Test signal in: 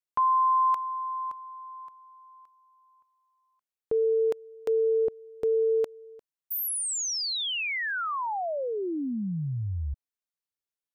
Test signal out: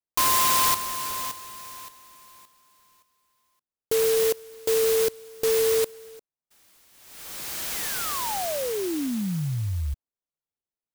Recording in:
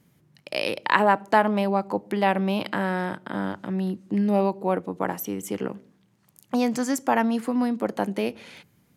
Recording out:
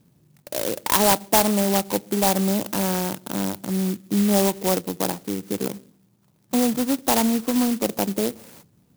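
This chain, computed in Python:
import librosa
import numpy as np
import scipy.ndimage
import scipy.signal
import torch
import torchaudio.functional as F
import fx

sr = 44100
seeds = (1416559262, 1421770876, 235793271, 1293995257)

p1 = np.clip(x, -10.0 ** (-15.0 / 20.0), 10.0 ** (-15.0 / 20.0))
p2 = x + (p1 * librosa.db_to_amplitude(-6.0))
p3 = fx.air_absorb(p2, sr, metres=340.0)
y = fx.clock_jitter(p3, sr, seeds[0], jitter_ms=0.15)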